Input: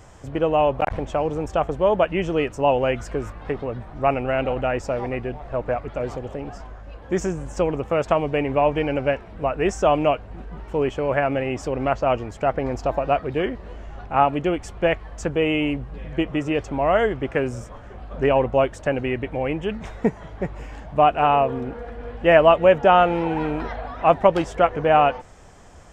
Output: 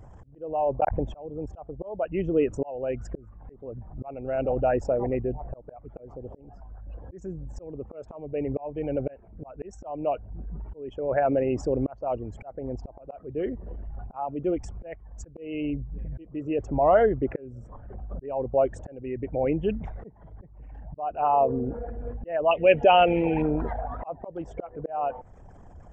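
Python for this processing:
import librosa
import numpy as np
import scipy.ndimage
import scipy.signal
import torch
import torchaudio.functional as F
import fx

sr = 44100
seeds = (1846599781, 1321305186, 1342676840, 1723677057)

y = fx.envelope_sharpen(x, sr, power=2.0)
y = fx.high_shelf_res(y, sr, hz=1700.0, db=12.5, q=3.0, at=(22.51, 23.42))
y = fx.auto_swell(y, sr, attack_ms=598.0)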